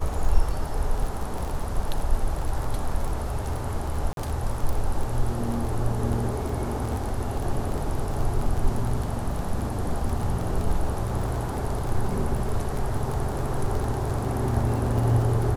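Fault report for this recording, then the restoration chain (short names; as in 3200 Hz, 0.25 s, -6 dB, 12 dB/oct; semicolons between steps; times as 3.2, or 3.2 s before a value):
crackle 20/s -27 dBFS
4.13–4.17 gap 42 ms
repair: de-click; interpolate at 4.13, 42 ms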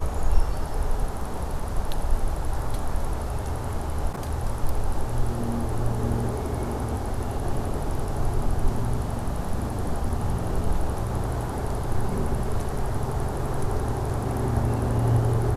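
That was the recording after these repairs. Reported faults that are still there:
none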